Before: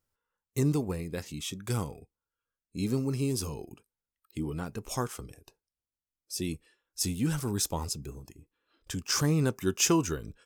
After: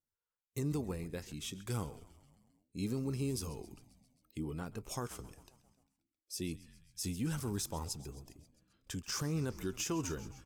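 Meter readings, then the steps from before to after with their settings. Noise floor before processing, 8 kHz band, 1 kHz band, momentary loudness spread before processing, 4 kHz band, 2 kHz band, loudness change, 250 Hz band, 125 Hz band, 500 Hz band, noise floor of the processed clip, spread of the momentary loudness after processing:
below −85 dBFS, −9.5 dB, −8.5 dB, 18 LU, −9.0 dB, −8.5 dB, −8.5 dB, −8.0 dB, −7.5 dB, −8.5 dB, below −85 dBFS, 14 LU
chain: noise reduction from a noise print of the clip's start 8 dB
echo with shifted repeats 133 ms, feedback 63%, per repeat −66 Hz, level −19 dB
brickwall limiter −21.5 dBFS, peak gain reduction 11 dB
level −6 dB

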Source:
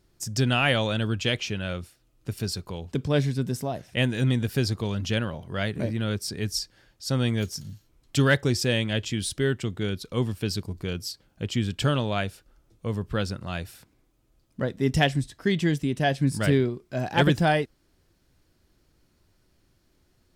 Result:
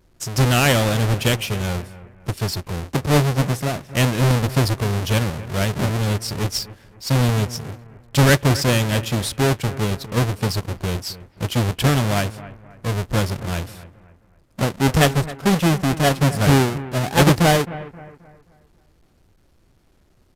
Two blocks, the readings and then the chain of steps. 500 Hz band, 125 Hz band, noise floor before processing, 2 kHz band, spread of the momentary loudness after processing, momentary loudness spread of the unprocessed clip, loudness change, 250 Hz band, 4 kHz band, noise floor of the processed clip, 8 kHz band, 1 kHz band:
+5.5 dB, +8.0 dB, −67 dBFS, +5.0 dB, 13 LU, 11 LU, +6.5 dB, +5.5 dB, +5.5 dB, −57 dBFS, +9.5 dB, +8.0 dB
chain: each half-wave held at its own peak
downsampling to 32,000 Hz
bucket-brigade delay 265 ms, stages 4,096, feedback 37%, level −16.5 dB
level +2 dB

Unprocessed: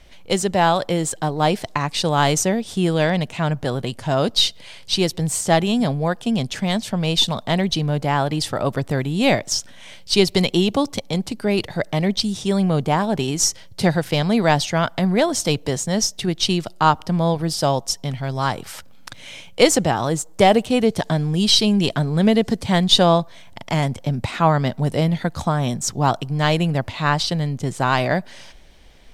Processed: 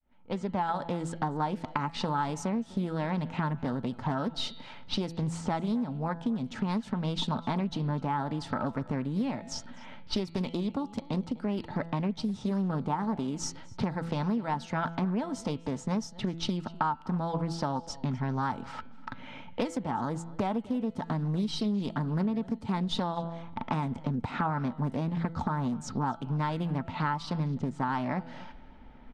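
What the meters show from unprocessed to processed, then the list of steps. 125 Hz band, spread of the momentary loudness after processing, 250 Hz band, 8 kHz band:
−11.0 dB, 5 LU, −9.5 dB, −21.0 dB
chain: fade in at the beginning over 0.90 s
low-pass filter 11,000 Hz 12 dB per octave
hollow resonant body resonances 250/890/1,300 Hz, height 14 dB, ringing for 40 ms
low-pass that shuts in the quiet parts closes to 2,400 Hz, open at −10.5 dBFS
high-shelf EQ 2,400 Hz −10 dB
hum removal 167 Hz, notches 28
downward compressor 10 to 1, threshold −23 dBFS, peak gain reduction 19.5 dB
parametric band 330 Hz −5 dB 0.79 octaves
slap from a distant wall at 43 metres, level −20 dB
highs frequency-modulated by the lows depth 0.38 ms
level −3 dB

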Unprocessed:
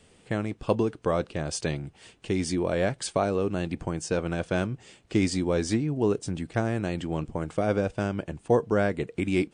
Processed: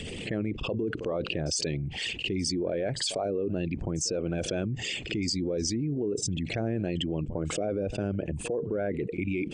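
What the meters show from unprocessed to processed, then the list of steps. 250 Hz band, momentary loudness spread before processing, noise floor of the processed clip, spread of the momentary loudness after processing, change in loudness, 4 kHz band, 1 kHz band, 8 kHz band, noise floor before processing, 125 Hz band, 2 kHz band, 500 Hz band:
−3.0 dB, 6 LU, −39 dBFS, 3 LU, −2.5 dB, +6.5 dB, −9.0 dB, +4.0 dB, −59 dBFS, −2.5 dB, −2.5 dB, −4.0 dB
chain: spectral envelope exaggerated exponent 2
flat-topped bell 3,900 Hz +13 dB 2.3 octaves
brickwall limiter −19 dBFS, peak gain reduction 10 dB
echo ahead of the sound 52 ms −21 dB
envelope flattener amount 70%
level −3.5 dB

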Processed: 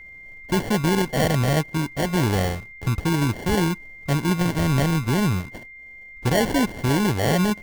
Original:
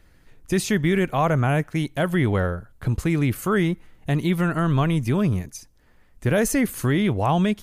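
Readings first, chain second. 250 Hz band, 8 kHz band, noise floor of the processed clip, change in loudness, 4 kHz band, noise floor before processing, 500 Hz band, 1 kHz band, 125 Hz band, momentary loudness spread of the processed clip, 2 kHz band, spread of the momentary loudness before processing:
0.0 dB, +1.5 dB, −43 dBFS, 0.0 dB, +5.5 dB, −56 dBFS, −0.5 dB, 0.0 dB, 0.0 dB, 10 LU, +0.5 dB, 7 LU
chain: decimation without filtering 35×
steady tone 2,100 Hz −40 dBFS

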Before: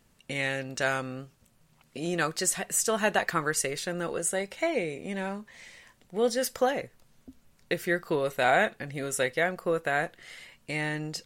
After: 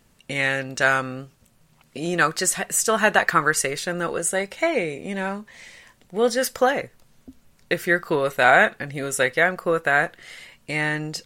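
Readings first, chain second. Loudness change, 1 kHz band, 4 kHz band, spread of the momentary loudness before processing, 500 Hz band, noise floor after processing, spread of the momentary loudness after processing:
+7.0 dB, +8.0 dB, +5.5 dB, 13 LU, +5.5 dB, −60 dBFS, 13 LU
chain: dynamic equaliser 1,400 Hz, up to +6 dB, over −40 dBFS, Q 1.2
level +5 dB

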